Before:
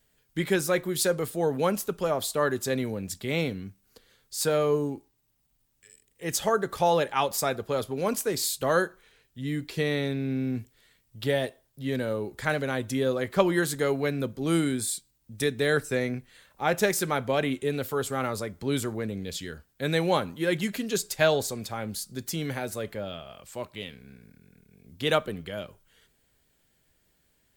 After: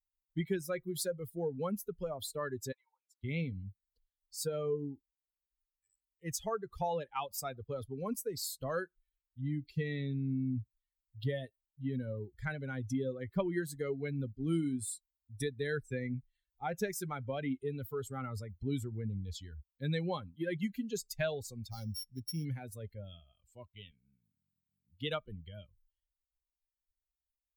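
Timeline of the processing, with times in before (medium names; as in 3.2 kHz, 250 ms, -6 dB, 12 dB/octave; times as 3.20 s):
2.72–3.24 s: ladder high-pass 850 Hz, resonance 70%
21.70–22.45 s: sorted samples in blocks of 8 samples
23.91–25.08 s: high-pass 93 Hz
whole clip: expander on every frequency bin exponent 2; compression 2:1, threshold -38 dBFS; bass shelf 240 Hz +9 dB; trim -1.5 dB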